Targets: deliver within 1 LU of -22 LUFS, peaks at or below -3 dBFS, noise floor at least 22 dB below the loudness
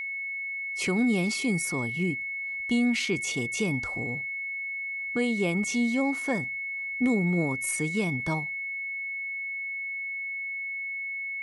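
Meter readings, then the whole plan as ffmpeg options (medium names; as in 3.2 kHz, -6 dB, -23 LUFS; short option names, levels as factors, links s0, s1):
steady tone 2.2 kHz; tone level -31 dBFS; loudness -28.5 LUFS; peak level -15.5 dBFS; loudness target -22.0 LUFS
-> -af "bandreject=f=2200:w=30"
-af "volume=2.11"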